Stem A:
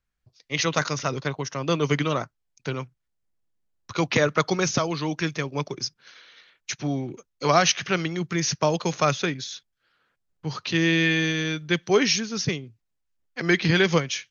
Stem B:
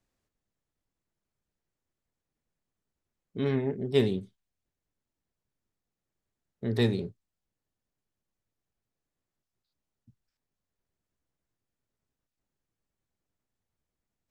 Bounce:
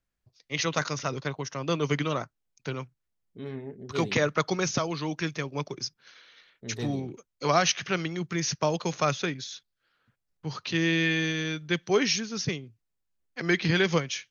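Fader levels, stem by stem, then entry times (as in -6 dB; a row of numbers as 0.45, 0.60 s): -4.0, -9.5 dB; 0.00, 0.00 s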